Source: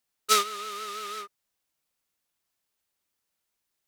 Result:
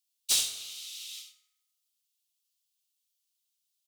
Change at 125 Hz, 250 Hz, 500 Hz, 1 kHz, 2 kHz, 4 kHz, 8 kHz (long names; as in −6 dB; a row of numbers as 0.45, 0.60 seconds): can't be measured, below −10 dB, below −20 dB, −28.0 dB, −9.5 dB, −0.5 dB, +2.0 dB